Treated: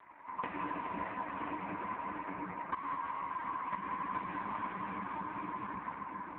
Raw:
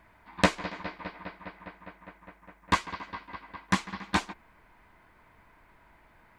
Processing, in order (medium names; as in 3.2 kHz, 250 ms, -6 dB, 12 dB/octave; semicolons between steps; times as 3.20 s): gate with hold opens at -57 dBFS; cabinet simulation 230–2600 Hz, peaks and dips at 260 Hz +8 dB, 520 Hz -8 dB, 1 kHz +10 dB; reverberation RT60 5.8 s, pre-delay 22 ms, DRR -4 dB; compression 6:1, threshold -36 dBFS, peak gain reduction 21.5 dB; trim +2.5 dB; AMR-NB 4.75 kbps 8 kHz